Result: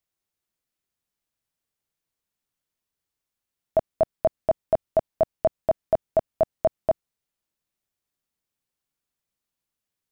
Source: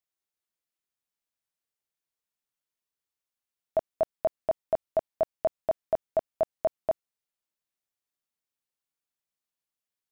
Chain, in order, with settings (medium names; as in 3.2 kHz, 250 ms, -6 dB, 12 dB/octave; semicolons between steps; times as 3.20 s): bass shelf 290 Hz +8.5 dB; trim +3.5 dB